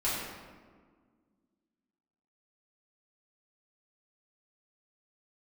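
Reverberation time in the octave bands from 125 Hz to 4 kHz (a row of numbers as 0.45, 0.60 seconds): 2.0, 2.6, 1.7, 1.5, 1.2, 0.90 seconds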